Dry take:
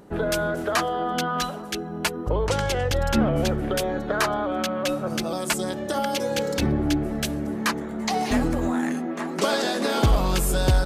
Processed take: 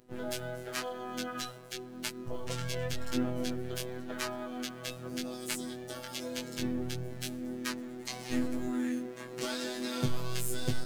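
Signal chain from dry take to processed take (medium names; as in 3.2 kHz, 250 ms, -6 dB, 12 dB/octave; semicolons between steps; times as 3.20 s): peaking EQ 840 Hz -11 dB 1.4 oct; in parallel at -8 dB: bit crusher 7-bit; on the sum: robot voice 125 Hz; chorus 0.92 Hz, delay 19 ms, depth 3.2 ms; harmony voices +5 st -11 dB, +12 st -16 dB; trim -7 dB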